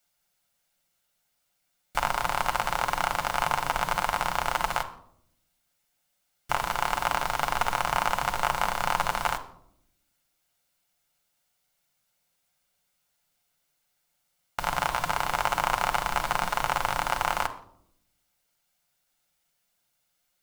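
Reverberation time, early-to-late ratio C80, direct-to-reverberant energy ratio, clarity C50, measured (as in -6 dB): 0.70 s, 17.0 dB, 5.5 dB, 14.0 dB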